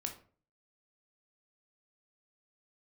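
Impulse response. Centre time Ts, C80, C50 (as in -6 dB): 14 ms, 15.5 dB, 10.0 dB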